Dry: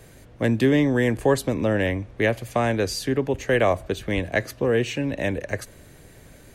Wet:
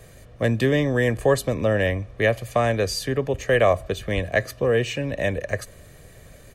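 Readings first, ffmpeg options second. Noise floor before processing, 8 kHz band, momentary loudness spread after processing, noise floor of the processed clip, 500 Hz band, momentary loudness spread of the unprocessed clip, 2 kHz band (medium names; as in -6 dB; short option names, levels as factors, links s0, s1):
-49 dBFS, +1.0 dB, 7 LU, -48 dBFS, +1.5 dB, 8 LU, +1.5 dB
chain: -af "aecho=1:1:1.7:0.44"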